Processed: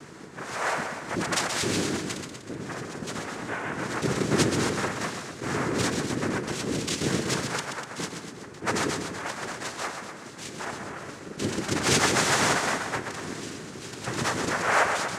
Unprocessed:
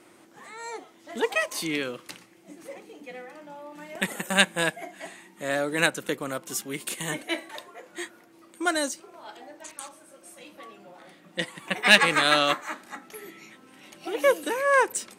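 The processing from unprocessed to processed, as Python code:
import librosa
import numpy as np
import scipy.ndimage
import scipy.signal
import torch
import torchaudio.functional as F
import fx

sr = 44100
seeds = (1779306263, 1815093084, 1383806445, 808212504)

p1 = fx.sample_sort(x, sr, block=32, at=(9.28, 9.69))
p2 = fx.low_shelf(p1, sr, hz=470.0, db=9.5)
p3 = fx.hum_notches(p2, sr, base_hz=60, count=5)
p4 = fx.over_compress(p3, sr, threshold_db=-33.0, ratio=-1.0)
p5 = p3 + (p4 * 10.0 ** (0.5 / 20.0))
p6 = np.clip(p5, -10.0 ** (-13.0 / 20.0), 10.0 ** (-13.0 / 20.0))
p7 = fx.fixed_phaser(p6, sr, hz=1800.0, stages=6)
p8 = fx.noise_vocoder(p7, sr, seeds[0], bands=3)
p9 = p8 + fx.echo_multitap(p8, sr, ms=(130, 245, 377), db=(-6.5, -10.0, -15.0), dry=0)
y = fx.attack_slew(p9, sr, db_per_s=220.0)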